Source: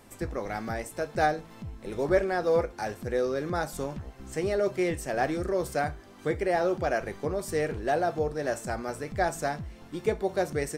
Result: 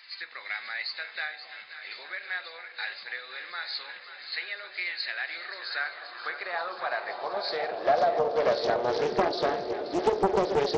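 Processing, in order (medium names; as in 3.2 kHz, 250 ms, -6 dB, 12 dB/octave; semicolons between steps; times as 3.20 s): knee-point frequency compression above 3.5 kHz 4:1; de-hum 53.87 Hz, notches 19; compression, threshold -30 dBFS, peak gain reduction 11.5 dB; echo whose repeats swap between lows and highs 265 ms, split 830 Hz, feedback 88%, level -10.5 dB; high-pass sweep 2 kHz -> 380 Hz, 5.23–9.21 s; loudspeaker Doppler distortion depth 0.65 ms; trim +4.5 dB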